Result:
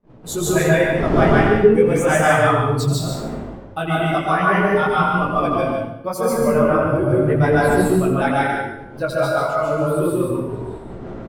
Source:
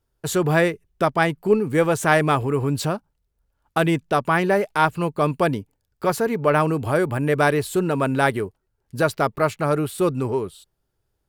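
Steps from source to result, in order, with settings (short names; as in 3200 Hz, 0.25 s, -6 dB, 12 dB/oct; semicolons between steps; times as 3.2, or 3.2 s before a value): per-bin expansion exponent 2; wind noise 370 Hz -35 dBFS; in parallel at -2.5 dB: limiter -17 dBFS, peak gain reduction 10.5 dB; on the sum: chorus 0.38 Hz, delay 16 ms, depth 6.5 ms; 6.38–7.58 tilt shelf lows +4 dB, about 730 Hz; flange 1.9 Hz, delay 3 ms, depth 8.7 ms, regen -17%; gate -47 dBFS, range -25 dB; on a send: loudspeakers at several distances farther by 29 m -10 dB, 50 m -5 dB; on the sum: plate-style reverb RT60 0.83 s, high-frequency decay 0.75×, pre-delay 0.12 s, DRR -4.5 dB; gain +3.5 dB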